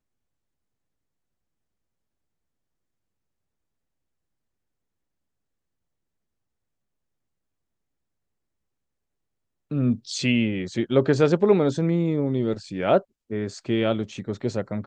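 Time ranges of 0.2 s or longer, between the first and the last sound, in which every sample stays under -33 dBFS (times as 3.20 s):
13.01–13.31 s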